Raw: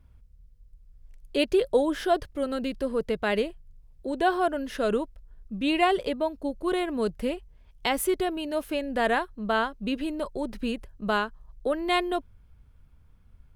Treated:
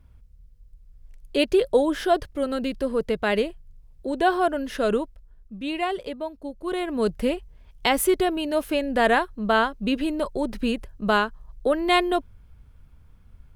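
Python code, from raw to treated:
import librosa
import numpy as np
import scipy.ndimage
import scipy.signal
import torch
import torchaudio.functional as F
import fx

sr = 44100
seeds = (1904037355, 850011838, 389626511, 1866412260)

y = fx.gain(x, sr, db=fx.line((4.93, 3.0), (5.54, -4.0), (6.56, -4.0), (7.1, 5.0)))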